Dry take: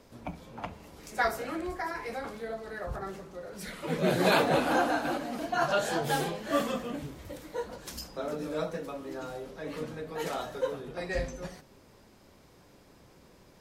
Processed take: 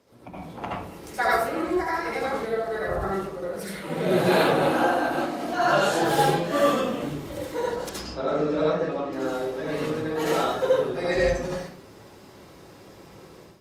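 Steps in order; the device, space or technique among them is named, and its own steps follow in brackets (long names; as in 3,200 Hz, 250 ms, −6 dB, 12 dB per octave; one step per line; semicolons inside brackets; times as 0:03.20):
0:07.89–0:09.13: high-frequency loss of the air 120 metres
far-field microphone of a smart speaker (convolution reverb RT60 0.50 s, pre-delay 67 ms, DRR −5 dB; high-pass filter 85 Hz 12 dB per octave; automatic gain control gain up to 11 dB; level −6.5 dB; Opus 48 kbit/s 48,000 Hz)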